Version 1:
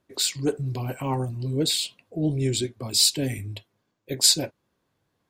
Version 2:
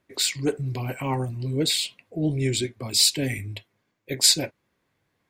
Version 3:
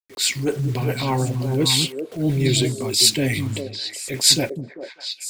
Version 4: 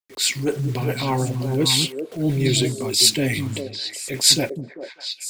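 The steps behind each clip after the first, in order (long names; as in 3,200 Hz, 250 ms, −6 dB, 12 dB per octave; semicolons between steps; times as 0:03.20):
parametric band 2,100 Hz +8.5 dB 0.59 octaves
bit-depth reduction 8 bits, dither none; echo through a band-pass that steps 198 ms, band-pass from 180 Hz, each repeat 1.4 octaves, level −1.5 dB; transient designer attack −7 dB, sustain +1 dB; level +5.5 dB
parametric band 75 Hz −6.5 dB 0.77 octaves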